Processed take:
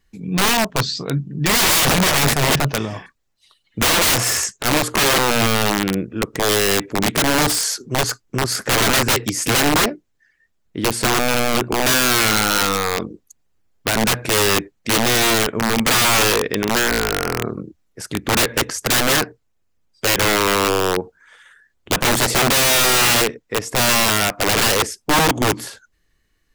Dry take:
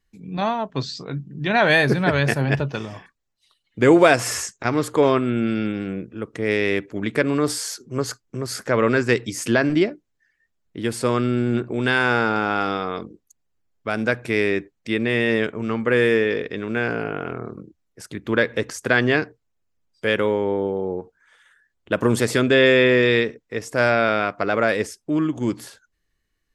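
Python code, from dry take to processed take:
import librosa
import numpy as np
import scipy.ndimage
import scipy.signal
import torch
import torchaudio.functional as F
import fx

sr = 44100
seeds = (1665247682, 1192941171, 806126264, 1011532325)

p1 = fx.rider(x, sr, range_db=3, speed_s=2.0)
p2 = x + F.gain(torch.from_numpy(p1), 0.0).numpy()
p3 = (np.mod(10.0 ** (11.5 / 20.0) * p2 + 1.0, 2.0) - 1.0) / 10.0 ** (11.5 / 20.0)
y = F.gain(torch.from_numpy(p3), 1.0).numpy()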